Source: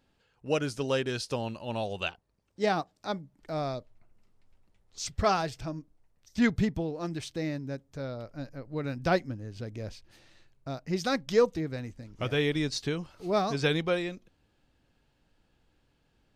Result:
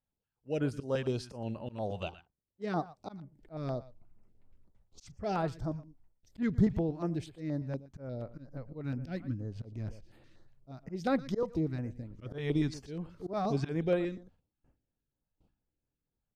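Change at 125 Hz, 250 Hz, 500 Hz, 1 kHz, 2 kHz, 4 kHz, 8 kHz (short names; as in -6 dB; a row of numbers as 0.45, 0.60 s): -0.5 dB, -2.0 dB, -6.0 dB, -7.0 dB, -11.0 dB, -13.5 dB, under -10 dB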